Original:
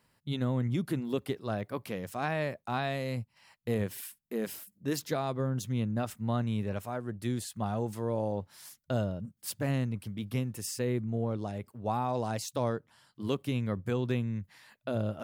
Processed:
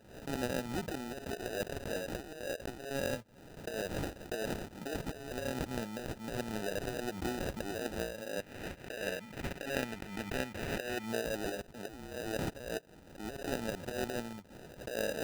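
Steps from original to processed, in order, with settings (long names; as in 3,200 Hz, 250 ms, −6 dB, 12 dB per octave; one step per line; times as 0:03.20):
high-pass filter 520 Hz 12 dB per octave
compressor whose output falls as the input rises −40 dBFS, ratio −0.5
sample-rate reduction 1,100 Hz, jitter 0%
0:08.40–0:11.06: parametric band 2,200 Hz +8.5 dB 0.88 octaves
background raised ahead of every attack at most 86 dB per second
level +3 dB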